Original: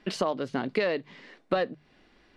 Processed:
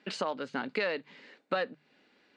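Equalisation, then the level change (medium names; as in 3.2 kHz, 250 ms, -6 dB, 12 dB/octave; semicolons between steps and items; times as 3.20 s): dynamic bell 1.1 kHz, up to +6 dB, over -41 dBFS, Q 0.73; dynamic bell 520 Hz, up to -5 dB, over -36 dBFS, Q 0.78; cabinet simulation 270–7700 Hz, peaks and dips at 350 Hz -7 dB, 690 Hz -7 dB, 1.1 kHz -8 dB, 1.9 kHz -4 dB, 3.3 kHz -4 dB, 5.6 kHz -7 dB; 0.0 dB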